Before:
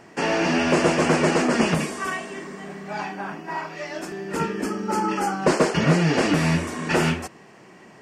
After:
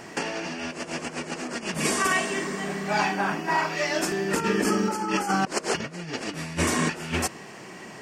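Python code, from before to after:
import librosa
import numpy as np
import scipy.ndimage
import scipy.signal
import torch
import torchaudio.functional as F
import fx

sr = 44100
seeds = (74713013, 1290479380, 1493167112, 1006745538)

y = fx.high_shelf(x, sr, hz=2600.0, db=7.0)
y = fx.over_compress(y, sr, threshold_db=-26.0, ratio=-0.5)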